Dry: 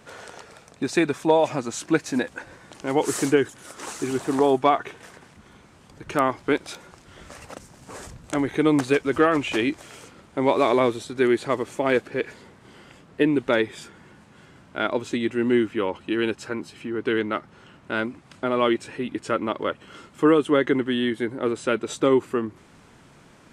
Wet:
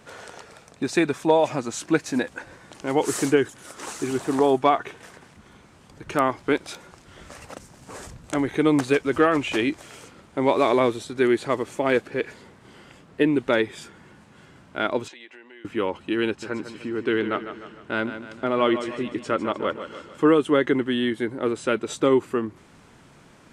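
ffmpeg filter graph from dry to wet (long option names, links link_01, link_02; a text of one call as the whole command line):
ffmpeg -i in.wav -filter_complex "[0:a]asettb=1/sr,asplit=3[link_01][link_02][link_03];[link_01]atrim=end=15.084[link_04];[link_02]atrim=start=15.08:end=15.65,asetpts=PTS-STARTPTS,afade=type=in:duration=0.004:curve=qsin,afade=type=out:start_time=0.566:duration=0.004:curve=qsin,bandreject=frequency=1300:width=5,acompressor=threshold=-31dB:ratio=16:attack=3.2:release=140:knee=1:detection=peak,highpass=780,lowpass=4400[link_05];[link_03]atrim=start=15.646[link_06];[link_04][link_05]acrossfade=duration=0.004:curve1=hsin:curve2=qsin[link_07];[link_07][link_06]acrossfade=duration=0.004:curve1=qsin:curve2=hsin,asettb=1/sr,asplit=3[link_08][link_09][link_10];[link_08]atrim=end=16.274[link_11];[link_09]atrim=start=16.27:end=20.32,asetpts=PTS-STARTPTS,afade=type=in:duration=0.004:curve=qsin,afade=type=out:start_time=4.046:duration=0.004:curve=qsin,highshelf=frequency=10000:gain=-10,aecho=1:1:151|302|453|604|755:0.299|0.149|0.0746|0.0373|0.0187,atrim=end_sample=178605[link_12];[link_10]atrim=start=20.316[link_13];[link_11][link_12]acrossfade=duration=0.004:curve1=hsin:curve2=qsin[link_14];[link_14][link_13]acrossfade=duration=0.004:curve1=qsin:curve2=hsin" out.wav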